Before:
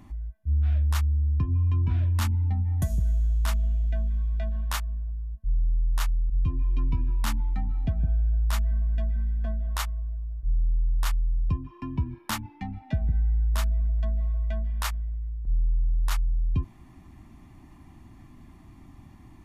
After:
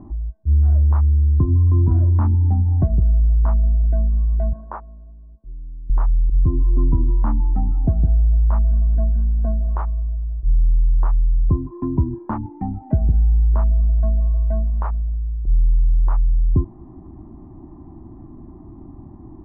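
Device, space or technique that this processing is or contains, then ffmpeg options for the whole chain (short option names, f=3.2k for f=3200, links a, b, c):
under water: -filter_complex "[0:a]lowpass=f=1k:w=0.5412,lowpass=f=1k:w=1.3066,equalizer=f=350:t=o:w=0.57:g=9,asettb=1/sr,asplit=3[a][b][c];[a]atrim=end=4.534[d];[b]atrim=start=4.53:end=5.9,asetpts=PTS-STARTPTS,afade=t=in:d=0.004:c=qsin,afade=t=out:st=1.366:d=0.004:c=qsin,acrossover=split=250 2000:gain=0.126 1 0.251[e][f][g];[e][f][g]amix=inputs=3:normalize=0[h];[c]atrim=start=5.896[i];[d][h]acrossfade=d=0.004:c1=hsin:c2=qsin[j];[j][i]acrossfade=d=0.004:c1=qsin:c2=hsin,volume=8.5dB"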